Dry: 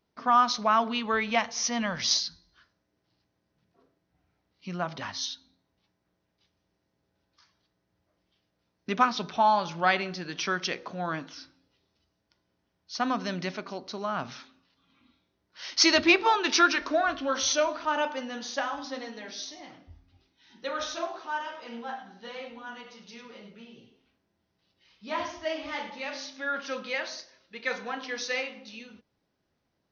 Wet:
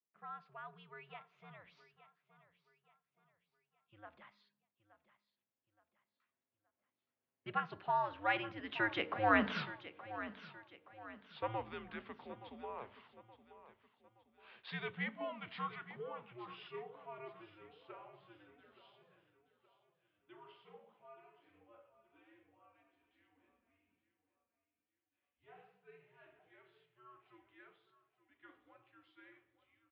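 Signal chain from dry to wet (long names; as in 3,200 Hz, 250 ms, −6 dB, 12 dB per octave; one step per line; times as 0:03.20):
source passing by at 0:09.60, 55 m/s, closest 4.7 metres
repeating echo 872 ms, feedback 40%, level −14.5 dB
single-sideband voice off tune −110 Hz 280–3,200 Hz
level +15.5 dB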